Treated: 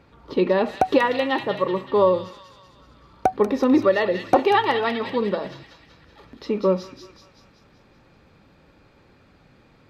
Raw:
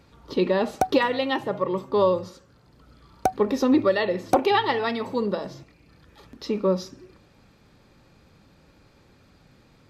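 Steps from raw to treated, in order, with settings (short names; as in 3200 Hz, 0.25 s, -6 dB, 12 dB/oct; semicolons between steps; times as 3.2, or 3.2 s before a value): tone controls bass -3 dB, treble -12 dB; thin delay 0.19 s, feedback 56%, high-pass 2600 Hz, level -3.5 dB; gain +3 dB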